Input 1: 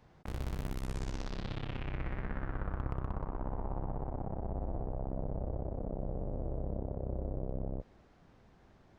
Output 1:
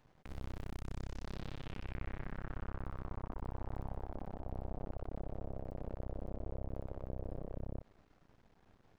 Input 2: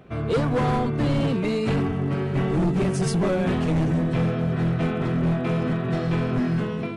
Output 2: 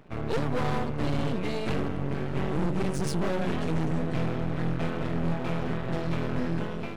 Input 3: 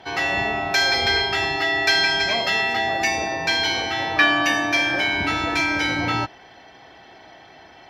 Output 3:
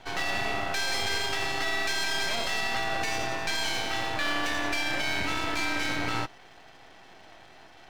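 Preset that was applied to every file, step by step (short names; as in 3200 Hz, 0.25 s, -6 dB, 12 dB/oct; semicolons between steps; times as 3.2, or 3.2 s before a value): limiter -14.5 dBFS; half-wave rectifier; gain -1.5 dB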